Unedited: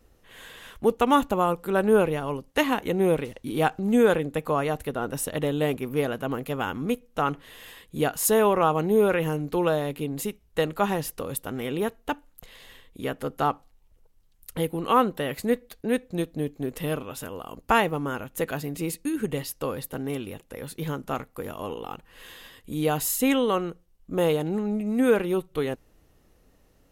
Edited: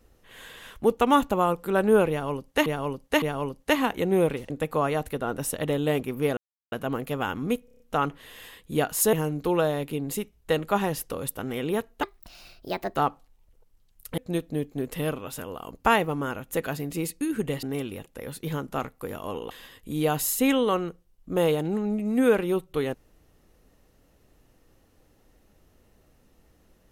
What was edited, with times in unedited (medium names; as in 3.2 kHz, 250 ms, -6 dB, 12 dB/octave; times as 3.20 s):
2.10–2.66 s: loop, 3 plays
3.38–4.24 s: delete
6.11 s: insert silence 0.35 s
7.04 s: stutter 0.03 s, 6 plays
8.37–9.21 s: delete
12.11–13.39 s: speed 138%
14.61–16.02 s: delete
19.47–19.98 s: delete
21.86–22.32 s: delete